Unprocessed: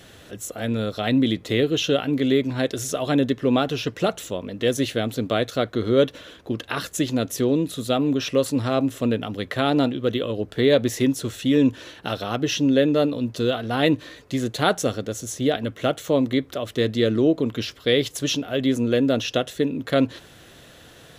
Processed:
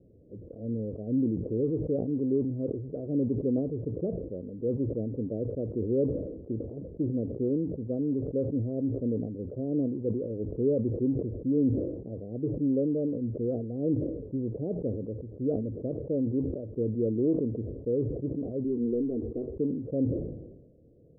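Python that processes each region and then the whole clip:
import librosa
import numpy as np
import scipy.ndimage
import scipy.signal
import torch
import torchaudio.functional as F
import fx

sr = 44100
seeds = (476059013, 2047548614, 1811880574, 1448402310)

y = fx.chain(x, sr, fx.leveller(passes=1),
    fx.fixed_phaser(hz=850.0, stages=8),
    fx.doubler(ms=13.0, db=-6.5), at=(18.64, 19.56))
y = scipy.signal.sosfilt(scipy.signal.butter(8, 530.0, 'lowpass', fs=sr, output='sos'), y)
y = fx.sustainer(y, sr, db_per_s=51.0)
y = y * 10.0 ** (-7.5 / 20.0)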